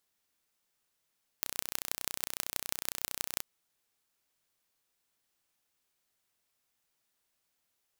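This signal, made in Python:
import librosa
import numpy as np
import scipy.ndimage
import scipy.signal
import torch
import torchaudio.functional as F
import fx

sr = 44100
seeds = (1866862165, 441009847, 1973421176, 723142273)

y = fx.impulse_train(sr, length_s=1.99, per_s=30.9, accent_every=5, level_db=-3.0)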